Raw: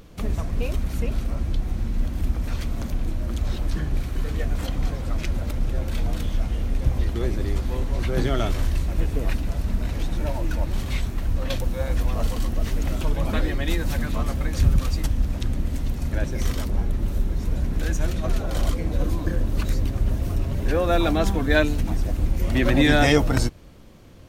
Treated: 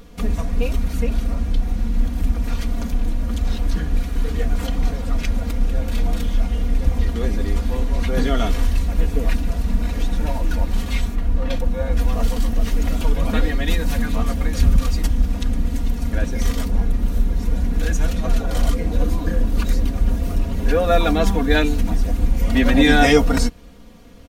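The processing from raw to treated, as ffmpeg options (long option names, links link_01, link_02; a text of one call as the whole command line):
ffmpeg -i in.wav -filter_complex "[0:a]asettb=1/sr,asplit=3[link_01][link_02][link_03];[link_01]atrim=end=11.154[link_04];[link_02]atrim=start=11.15:end=11.97,asetpts=PTS-STARTPTS,afade=type=in:duration=0.004:curve=qsin,afade=type=out:start_time=0.816:duration=0.004:curve=qsin,highshelf=frequency=3400:gain=-9.5[link_05];[link_03]atrim=start=11.966[link_06];[link_04][link_05]acrossfade=duration=0.004:curve1=hsin:curve2=qsin[link_07];[link_07][link_06]acrossfade=duration=0.004:curve1=qsin:curve2=hsin,aecho=1:1:4.2:0.77,volume=1.5dB" out.wav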